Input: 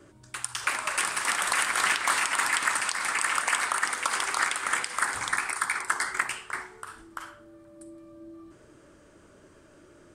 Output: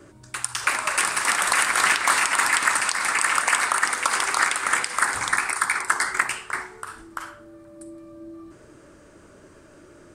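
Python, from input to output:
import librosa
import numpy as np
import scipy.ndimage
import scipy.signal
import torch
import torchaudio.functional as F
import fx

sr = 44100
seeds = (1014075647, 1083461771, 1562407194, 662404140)

y = fx.peak_eq(x, sr, hz=3200.0, db=-3.5, octaves=0.28)
y = F.gain(torch.from_numpy(y), 5.5).numpy()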